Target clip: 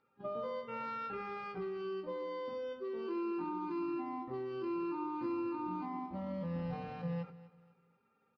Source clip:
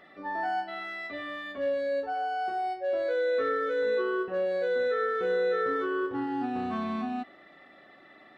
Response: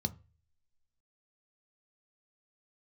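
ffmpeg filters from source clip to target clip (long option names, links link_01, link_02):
-filter_complex "[0:a]agate=range=-20dB:threshold=-41dB:ratio=16:detection=peak,asetrate=30296,aresample=44100,atempo=1.45565,lowpass=frequency=4600:width_type=q:width=6,acompressor=threshold=-35dB:ratio=4,aecho=1:1:245|490|735:0.126|0.0466|0.0172,asplit=2[link_01][link_02];[1:a]atrim=start_sample=2205,adelay=16[link_03];[link_02][link_03]afir=irnorm=-1:irlink=0,volume=-15.5dB[link_04];[link_01][link_04]amix=inputs=2:normalize=0,volume=-2.5dB"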